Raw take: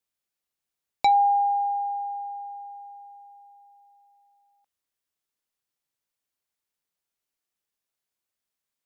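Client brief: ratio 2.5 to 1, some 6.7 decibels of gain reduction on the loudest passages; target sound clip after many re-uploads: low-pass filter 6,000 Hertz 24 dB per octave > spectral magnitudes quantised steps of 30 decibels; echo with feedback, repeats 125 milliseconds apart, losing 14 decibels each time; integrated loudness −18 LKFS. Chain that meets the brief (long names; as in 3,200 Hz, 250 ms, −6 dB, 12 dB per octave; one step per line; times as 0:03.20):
downward compressor 2.5 to 1, threshold −27 dBFS
low-pass filter 6,000 Hz 24 dB per octave
repeating echo 125 ms, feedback 20%, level −14 dB
spectral magnitudes quantised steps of 30 dB
level +11.5 dB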